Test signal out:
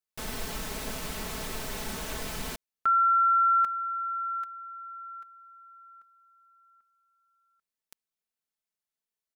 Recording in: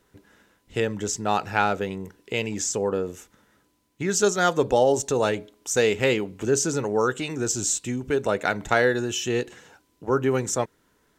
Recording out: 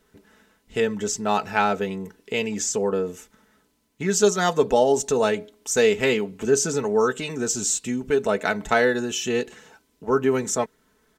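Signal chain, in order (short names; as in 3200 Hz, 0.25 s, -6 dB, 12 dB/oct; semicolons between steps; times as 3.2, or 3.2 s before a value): comb 4.6 ms, depth 56%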